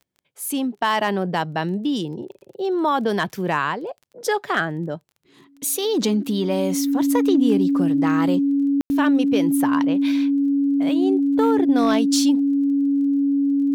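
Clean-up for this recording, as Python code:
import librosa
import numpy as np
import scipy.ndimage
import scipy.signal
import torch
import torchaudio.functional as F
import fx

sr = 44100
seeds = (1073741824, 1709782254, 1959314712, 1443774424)

y = fx.fix_declip(x, sr, threshold_db=-9.5)
y = fx.fix_declick_ar(y, sr, threshold=6.5)
y = fx.notch(y, sr, hz=280.0, q=30.0)
y = fx.fix_ambience(y, sr, seeds[0], print_start_s=0.0, print_end_s=0.5, start_s=8.81, end_s=8.9)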